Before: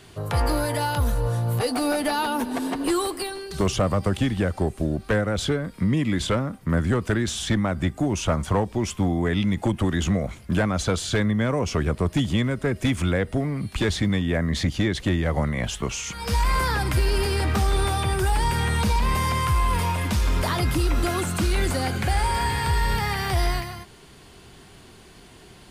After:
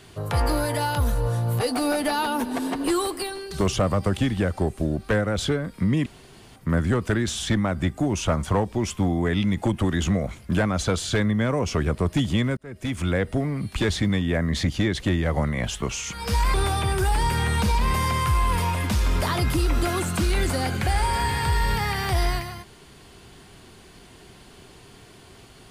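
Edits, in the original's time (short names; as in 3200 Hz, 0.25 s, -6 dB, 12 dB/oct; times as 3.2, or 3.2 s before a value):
6.06–6.56 room tone
12.57–13.17 fade in linear
16.54–17.75 cut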